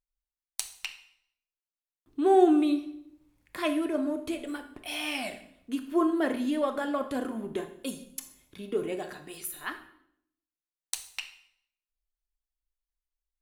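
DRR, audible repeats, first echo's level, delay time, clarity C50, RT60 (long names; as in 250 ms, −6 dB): 8.0 dB, no echo audible, no echo audible, no echo audible, 10.5 dB, 0.70 s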